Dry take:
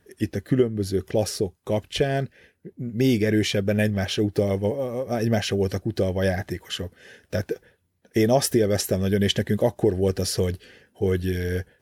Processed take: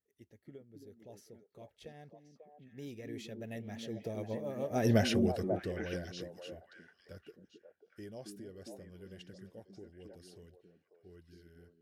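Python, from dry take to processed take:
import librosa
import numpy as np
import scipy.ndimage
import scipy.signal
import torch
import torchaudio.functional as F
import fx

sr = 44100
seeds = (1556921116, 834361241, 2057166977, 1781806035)

y = fx.doppler_pass(x, sr, speed_mps=25, closest_m=4.8, pass_at_s=4.93)
y = fx.echo_stepped(y, sr, ms=270, hz=250.0, octaves=1.4, feedback_pct=70, wet_db=-0.5)
y = y * 10.0 ** (-4.5 / 20.0)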